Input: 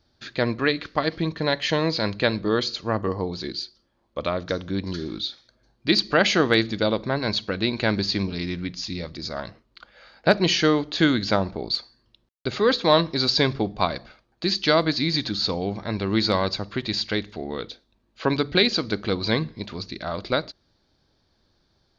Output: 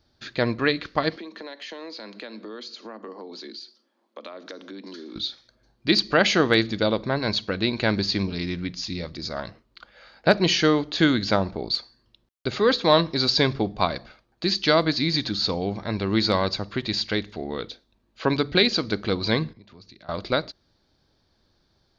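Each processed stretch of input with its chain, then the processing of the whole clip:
0:01.16–0:05.16: Butterworth high-pass 210 Hz 72 dB per octave + downward compressor 5 to 1, threshold −36 dBFS
0:19.53–0:20.09: downward compressor 12 to 1, threshold −44 dBFS + multiband upward and downward expander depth 100%
whole clip: no processing

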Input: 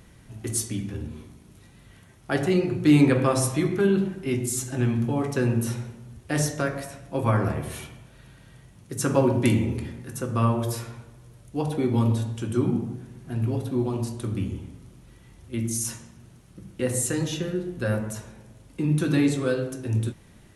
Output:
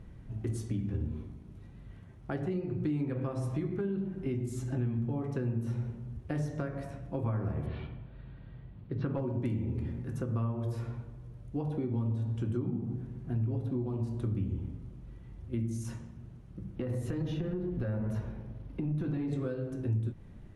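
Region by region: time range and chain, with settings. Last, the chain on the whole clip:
0:07.66–0:09.20: Butterworth low-pass 4,400 Hz 48 dB per octave + hard clipping −12.5 dBFS
0:16.76–0:19.33: parametric band 7,800 Hz −12 dB 0.65 octaves + downward compressor 4 to 1, threshold −30 dBFS + leveller curve on the samples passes 1
whole clip: high-shelf EQ 4,600 Hz −8.5 dB; downward compressor 6 to 1, threshold −30 dBFS; spectral tilt −2.5 dB per octave; level −5.5 dB

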